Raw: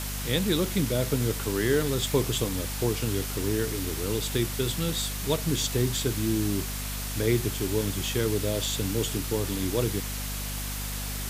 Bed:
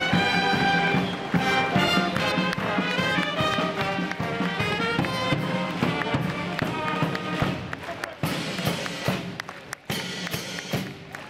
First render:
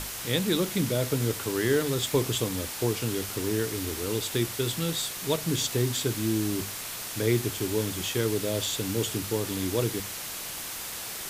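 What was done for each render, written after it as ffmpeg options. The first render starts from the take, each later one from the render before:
-af "bandreject=f=50:t=h:w=6,bandreject=f=100:t=h:w=6,bandreject=f=150:t=h:w=6,bandreject=f=200:t=h:w=6,bandreject=f=250:t=h:w=6"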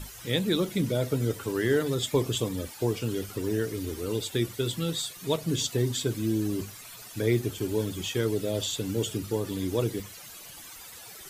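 -af "afftdn=nr=14:nf=-37"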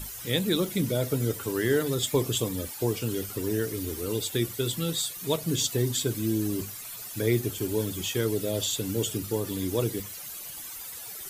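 -af "highshelf=f=9.3k:g=11.5"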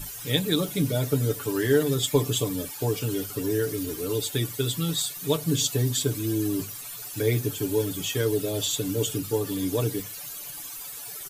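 -af "bandreject=f=2k:w=23,aecho=1:1:6.9:0.68"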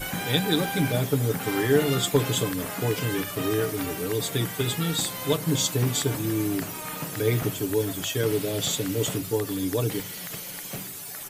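-filter_complex "[1:a]volume=-10dB[a];[0:a][a]amix=inputs=2:normalize=0"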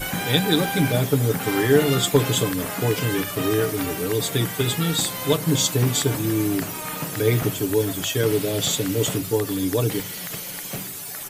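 -af "volume=4dB"

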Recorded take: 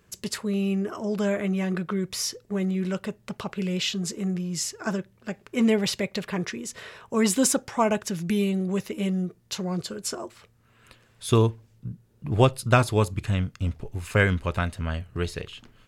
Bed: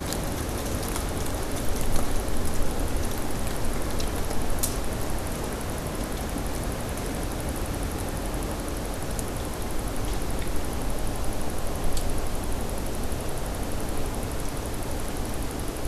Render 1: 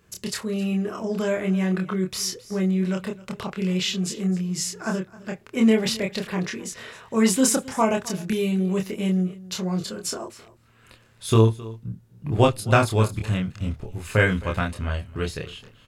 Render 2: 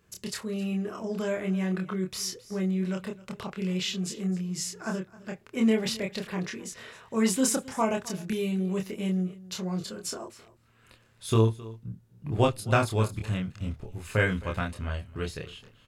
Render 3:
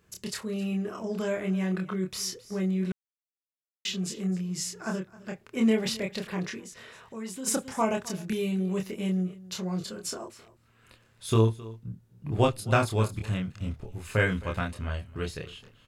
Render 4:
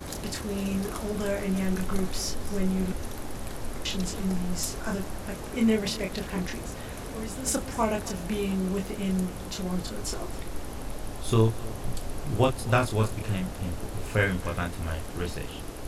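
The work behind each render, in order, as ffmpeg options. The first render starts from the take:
-filter_complex "[0:a]asplit=2[a][b];[b]adelay=27,volume=-3dB[c];[a][c]amix=inputs=2:normalize=0,aecho=1:1:264:0.106"
-af "volume=-5.5dB"
-filter_complex "[0:a]asplit=3[a][b][c];[a]afade=t=out:st=6.59:d=0.02[d];[b]acompressor=threshold=-45dB:ratio=2:attack=3.2:release=140:knee=1:detection=peak,afade=t=in:st=6.59:d=0.02,afade=t=out:st=7.46:d=0.02[e];[c]afade=t=in:st=7.46:d=0.02[f];[d][e][f]amix=inputs=3:normalize=0,asplit=3[g][h][i];[g]atrim=end=2.92,asetpts=PTS-STARTPTS,afade=t=out:st=2.916:d=0.004:c=hsin[j];[h]atrim=start=2.92:end=3.85,asetpts=PTS-STARTPTS,volume=0[k];[i]atrim=start=3.85,asetpts=PTS-STARTPTS,afade=t=in:d=0.004:c=hsin[l];[j][k][l]concat=n=3:v=0:a=1"
-filter_complex "[1:a]volume=-7.5dB[a];[0:a][a]amix=inputs=2:normalize=0"

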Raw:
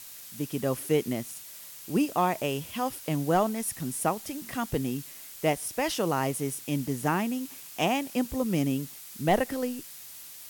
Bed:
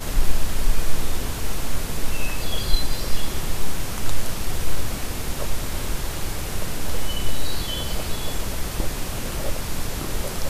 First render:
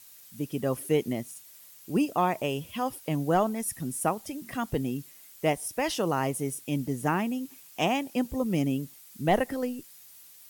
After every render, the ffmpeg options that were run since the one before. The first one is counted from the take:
-af "afftdn=nr=9:nf=-45"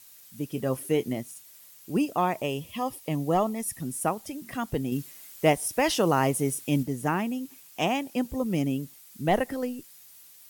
-filter_complex "[0:a]asettb=1/sr,asplit=3[a][b][c];[a]atrim=end=0.524[d];[b]atrim=start=0.52:end=1.18,asetpts=PTS-STARTPTS,afade=t=in:d=0.004:c=qsin,afade=t=out:st=0.656:d=0.004:c=qsin,asplit=2[e][f];[f]adelay=23,volume=-13dB[g];[e][g]amix=inputs=2:normalize=0,atrim=end_sample=29106[h];[c]atrim=start=1.176[i];[d][h]acrossfade=d=0.004:c1=hsin:c2=qsin[j];[j][i]acrossfade=d=0.004:c1=qsin:c2=hsin,asettb=1/sr,asplit=3[k][l][m];[k]atrim=end=2.424[n];[l]atrim=start=2.42:end=3.81,asetpts=PTS-STARTPTS,afade=t=in:d=0.004:c=qsin,afade=t=out:st=1.386:d=0.004:c=qsin,asuperstop=centerf=1500:order=8:qfactor=5.8[o];[m]atrim=start=3.806[p];[n][o]acrossfade=d=0.004:c1=hsin:c2=qsin[q];[q][p]acrossfade=d=0.004:c1=qsin:c2=hsin,asplit=3[r][s][t];[r]atrim=end=4.922[u];[s]atrim=start=4.918:end=6.832,asetpts=PTS-STARTPTS,volume=4.5dB[v];[t]atrim=start=6.828[w];[u][v]acrossfade=d=0.004:c1=hsin:c2=hsin[x];[x][w]acrossfade=d=0.004:c1=hsin:c2=hsin"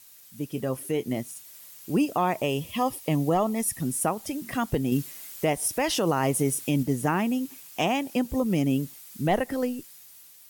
-af "alimiter=limit=-19.5dB:level=0:latency=1:release=172,dynaudnorm=f=360:g=7:m=5dB"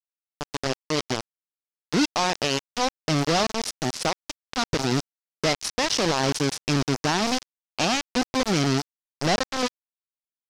-af "acrusher=bits=3:mix=0:aa=0.000001,lowpass=f=5.4k:t=q:w=2.5"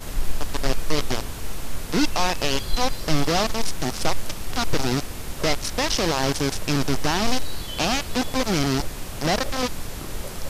-filter_complex "[1:a]volume=-5dB[a];[0:a][a]amix=inputs=2:normalize=0"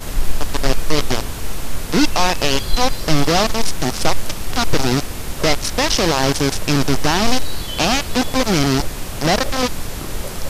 -af "volume=6dB,alimiter=limit=-1dB:level=0:latency=1"

